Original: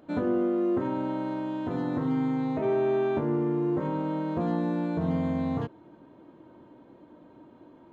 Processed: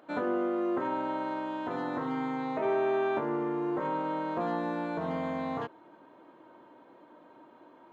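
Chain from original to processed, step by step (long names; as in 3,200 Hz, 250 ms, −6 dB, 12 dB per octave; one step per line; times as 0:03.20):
high-pass filter 510 Hz 6 dB per octave
parametric band 1,200 Hz +6.5 dB 2.6 octaves
level −1.5 dB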